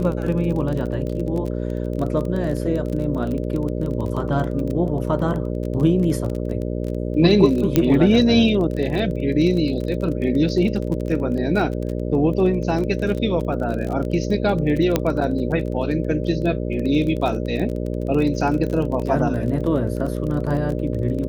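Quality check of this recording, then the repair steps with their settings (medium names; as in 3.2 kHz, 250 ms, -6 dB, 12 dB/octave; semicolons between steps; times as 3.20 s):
buzz 60 Hz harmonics 10 -25 dBFS
crackle 26 per s -26 dBFS
7.76 s: pop -3 dBFS
14.96 s: pop -4 dBFS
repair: de-click; de-hum 60 Hz, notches 10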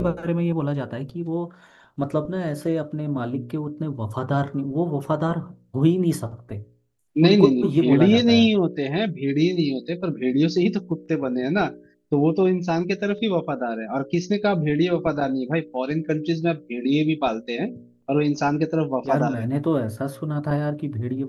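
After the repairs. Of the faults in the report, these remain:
nothing left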